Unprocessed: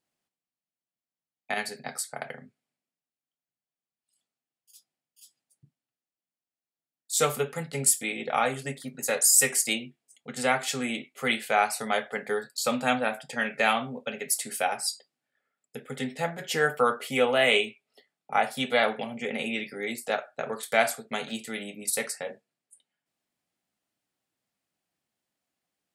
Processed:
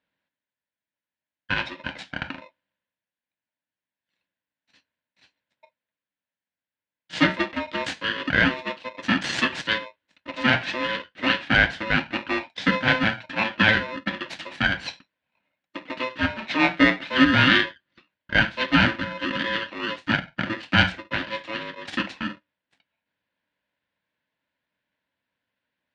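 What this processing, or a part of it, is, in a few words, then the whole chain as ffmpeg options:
ring modulator pedal into a guitar cabinet: -af "aeval=exprs='val(0)*sgn(sin(2*PI*770*n/s))':c=same,highpass=78,equalizer=f=190:t=q:w=4:g=5,equalizer=f=280:t=q:w=4:g=6,equalizer=f=410:t=q:w=4:g=-8,equalizer=f=1200:t=q:w=4:g=-9,equalizer=f=1700:t=q:w=4:g=7,lowpass=f=3600:w=0.5412,lowpass=f=3600:w=1.3066,volume=1.78"

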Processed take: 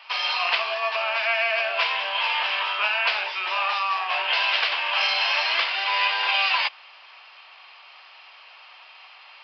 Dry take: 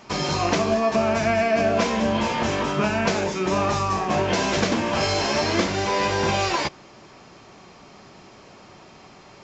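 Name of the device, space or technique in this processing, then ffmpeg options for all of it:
musical greeting card: -af "aresample=11025,aresample=44100,highpass=f=830:w=0.5412,highpass=f=830:w=1.3066,equalizer=f=2800:t=o:w=0.59:g=11"

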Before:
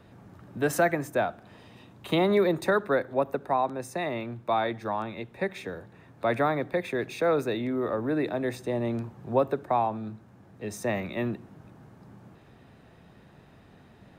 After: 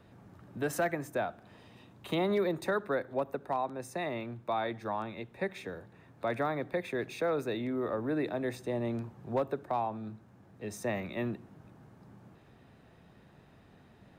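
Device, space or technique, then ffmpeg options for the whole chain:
clipper into limiter: -af "asoftclip=type=hard:threshold=0.178,alimiter=limit=0.133:level=0:latency=1:release=251,volume=0.596"

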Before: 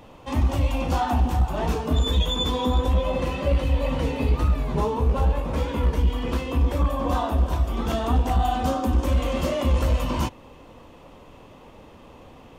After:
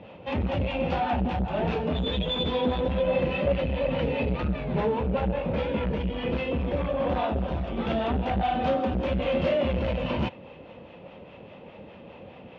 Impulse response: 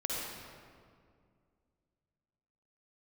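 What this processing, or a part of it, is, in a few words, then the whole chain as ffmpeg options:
guitar amplifier with harmonic tremolo: -filter_complex "[0:a]acrossover=split=580[s0][s1];[s0]aeval=exprs='val(0)*(1-0.5/2+0.5/2*cos(2*PI*4.9*n/s))':c=same[s2];[s1]aeval=exprs='val(0)*(1-0.5/2-0.5/2*cos(2*PI*4.9*n/s))':c=same[s3];[s2][s3]amix=inputs=2:normalize=0,asoftclip=type=tanh:threshold=0.0794,highpass=93,equalizer=f=190:t=q:w=4:g=6,equalizer=f=280:t=q:w=4:g=-4,equalizer=f=550:t=q:w=4:g=5,equalizer=f=1100:t=q:w=4:g=-8,equalizer=f=2500:t=q:w=4:g=4,lowpass=f=3500:w=0.5412,lowpass=f=3500:w=1.3066,volume=1.5"

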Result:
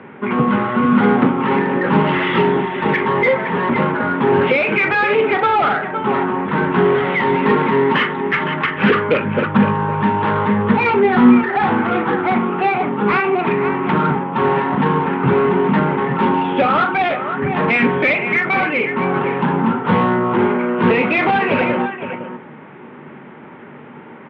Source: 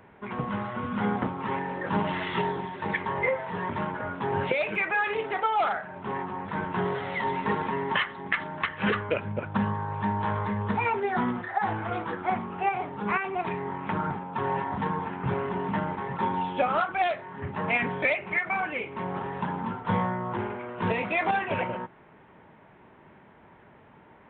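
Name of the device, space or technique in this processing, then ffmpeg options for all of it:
overdrive pedal into a guitar cabinet: -filter_complex "[0:a]aecho=1:1:41|512:0.224|0.237,asplit=2[s0][s1];[s1]highpass=f=720:p=1,volume=10,asoftclip=type=tanh:threshold=0.335[s2];[s0][s2]amix=inputs=2:normalize=0,lowpass=f=1500:p=1,volume=0.501,highpass=95,equalizer=f=150:t=q:w=4:g=9,equalizer=f=240:t=q:w=4:g=9,equalizer=f=370:t=q:w=4:g=3,equalizer=f=670:t=q:w=4:g=-9,equalizer=f=980:t=q:w=4:g=-6,equalizer=f=1700:t=q:w=4:g=-4,lowpass=f=3500:w=0.5412,lowpass=f=3500:w=1.3066,volume=2.37"

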